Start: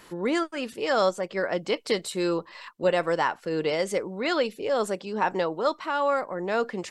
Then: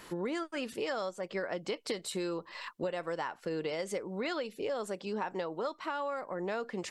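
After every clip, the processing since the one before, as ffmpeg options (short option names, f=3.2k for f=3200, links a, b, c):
-af "acompressor=threshold=-32dB:ratio=10"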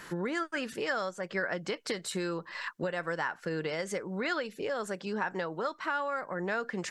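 -af "equalizer=f=160:t=o:w=0.67:g=6,equalizer=f=1.6k:t=o:w=0.67:g=10,equalizer=f=6.3k:t=o:w=0.67:g=4"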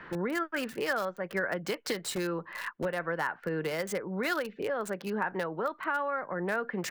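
-filter_complex "[0:a]acrossover=split=180|780|2900[a][b][c][d];[a]aeval=exprs='(mod(84.1*val(0)+1,2)-1)/84.1':c=same[e];[d]acrusher=bits=6:mix=0:aa=0.000001[f];[e][b][c][f]amix=inputs=4:normalize=0,volume=1.5dB"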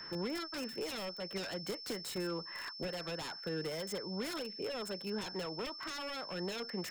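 -filter_complex "[0:a]acrossover=split=410[a][b];[b]aeval=exprs='0.0224*(abs(mod(val(0)/0.0224+3,4)-2)-1)':c=same[c];[a][c]amix=inputs=2:normalize=0,aeval=exprs='val(0)+0.01*sin(2*PI*5300*n/s)':c=same,volume=-5.5dB"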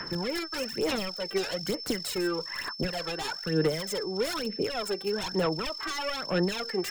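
-af "aphaser=in_gain=1:out_gain=1:delay=2.6:decay=0.64:speed=1.1:type=sinusoidal,volume=6.5dB"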